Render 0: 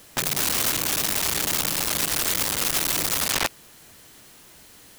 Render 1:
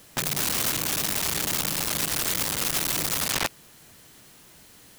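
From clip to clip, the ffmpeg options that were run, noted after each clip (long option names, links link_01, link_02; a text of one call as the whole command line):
ffmpeg -i in.wav -af "equalizer=frequency=150:width_type=o:width=1.2:gain=4,volume=-2.5dB" out.wav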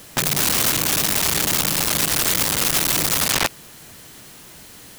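ffmpeg -i in.wav -af "alimiter=limit=-20dB:level=0:latency=1:release=33,volume=9dB" out.wav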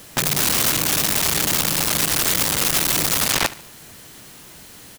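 ffmpeg -i in.wav -af "aecho=1:1:73|146|219:0.119|0.0499|0.021" out.wav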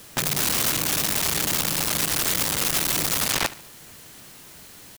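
ffmpeg -i in.wav -af "acrusher=bits=6:mix=0:aa=0.000001,volume=-4dB" out.wav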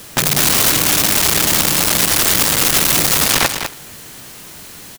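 ffmpeg -i in.wav -af "aecho=1:1:201:0.398,volume=9dB" out.wav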